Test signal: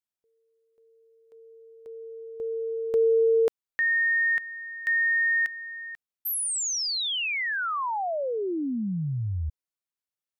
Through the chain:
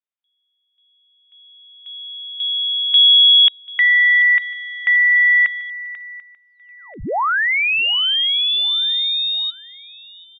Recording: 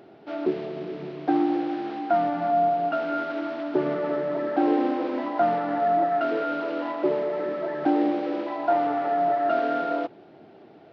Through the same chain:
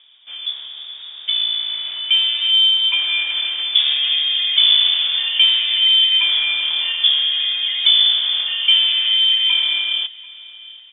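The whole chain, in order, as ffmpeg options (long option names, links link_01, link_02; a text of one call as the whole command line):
ffmpeg -i in.wav -af "dynaudnorm=framelen=540:gausssize=7:maxgain=12dB,lowpass=frequency=3200:width_type=q:width=0.5098,lowpass=frequency=3200:width_type=q:width=0.6013,lowpass=frequency=3200:width_type=q:width=0.9,lowpass=frequency=3200:width_type=q:width=2.563,afreqshift=-3800,aecho=1:1:739|1478|2217:0.0794|0.0373|0.0175,volume=-1dB" out.wav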